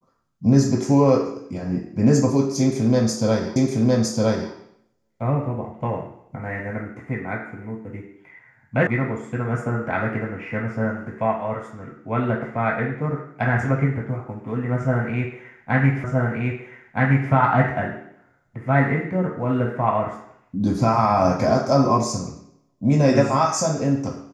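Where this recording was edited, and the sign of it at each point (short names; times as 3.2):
3.56 repeat of the last 0.96 s
8.87 sound cut off
16.04 repeat of the last 1.27 s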